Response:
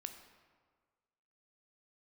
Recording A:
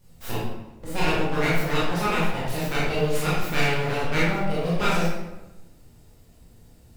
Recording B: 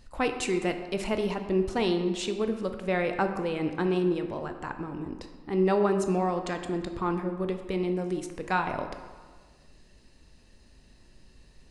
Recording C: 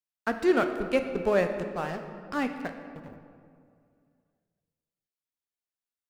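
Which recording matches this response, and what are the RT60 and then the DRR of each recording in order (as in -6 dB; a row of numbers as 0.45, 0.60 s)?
B; 1.1, 1.6, 2.3 s; -9.0, 6.5, 6.0 dB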